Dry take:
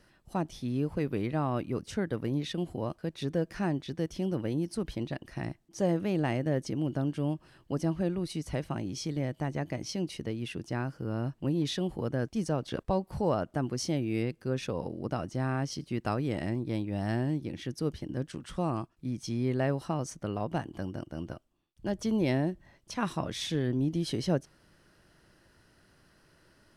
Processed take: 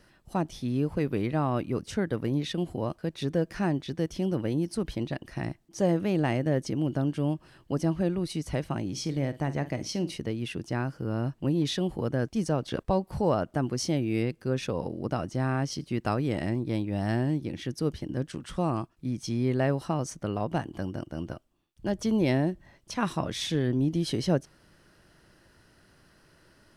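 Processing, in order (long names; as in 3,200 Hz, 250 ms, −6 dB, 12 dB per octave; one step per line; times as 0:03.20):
0:08.86–0:10.18: flutter between parallel walls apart 8.6 metres, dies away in 0.21 s
level +3 dB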